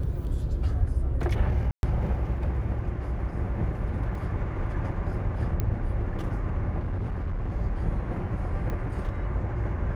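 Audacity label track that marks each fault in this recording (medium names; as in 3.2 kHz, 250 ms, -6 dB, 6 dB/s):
1.710000	1.830000	dropout 121 ms
4.150000	4.150000	dropout 2.9 ms
5.600000	5.600000	pop -15 dBFS
6.790000	7.520000	clipped -26 dBFS
8.700000	8.700000	pop -22 dBFS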